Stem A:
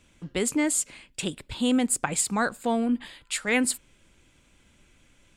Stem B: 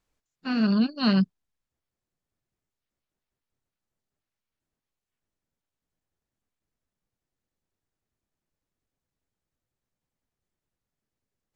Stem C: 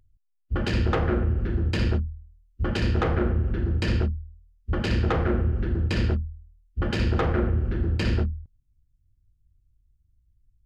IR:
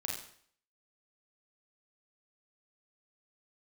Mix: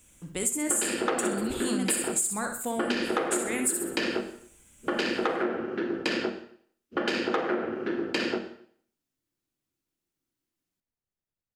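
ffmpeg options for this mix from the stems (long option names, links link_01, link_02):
-filter_complex "[0:a]alimiter=limit=-18.5dB:level=0:latency=1:release=272,aexciter=amount=5:drive=7.5:freq=6600,volume=-6dB,asplit=3[link_01][link_02][link_03];[link_02]volume=-8dB[link_04];[link_03]volume=-4.5dB[link_05];[1:a]adelay=650,volume=-8dB[link_06];[2:a]highpass=frequency=280:width=0.5412,highpass=frequency=280:width=1.3066,adelay=150,volume=2.5dB,asplit=2[link_07][link_08];[link_08]volume=-5dB[link_09];[3:a]atrim=start_sample=2205[link_10];[link_04][link_09]amix=inputs=2:normalize=0[link_11];[link_11][link_10]afir=irnorm=-1:irlink=0[link_12];[link_05]aecho=0:1:63|126|189|252|315:1|0.34|0.116|0.0393|0.0134[link_13];[link_01][link_06][link_07][link_12][link_13]amix=inputs=5:normalize=0,acompressor=threshold=-24dB:ratio=6"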